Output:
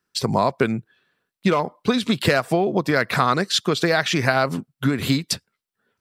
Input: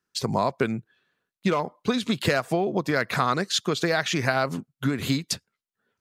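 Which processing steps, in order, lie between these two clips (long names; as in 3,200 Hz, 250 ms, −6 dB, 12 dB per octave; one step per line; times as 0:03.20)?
notch filter 6,600 Hz, Q 10
level +4.5 dB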